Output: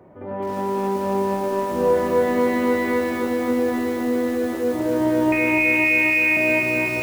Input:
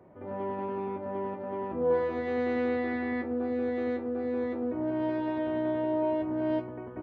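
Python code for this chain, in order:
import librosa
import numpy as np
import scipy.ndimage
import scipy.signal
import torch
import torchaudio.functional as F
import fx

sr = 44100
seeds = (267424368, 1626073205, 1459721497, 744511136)

y = fx.freq_invert(x, sr, carrier_hz=2800, at=(5.32, 6.37))
y = fx.echo_crushed(y, sr, ms=260, feedback_pct=80, bits=8, wet_db=-3.0)
y = y * 10.0 ** (7.0 / 20.0)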